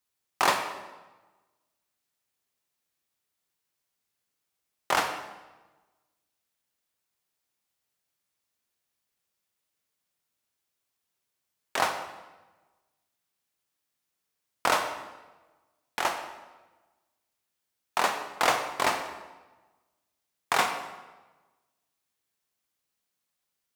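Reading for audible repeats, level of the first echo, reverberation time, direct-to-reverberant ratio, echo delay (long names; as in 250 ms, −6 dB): no echo audible, no echo audible, 1.2 s, 6.0 dB, no echo audible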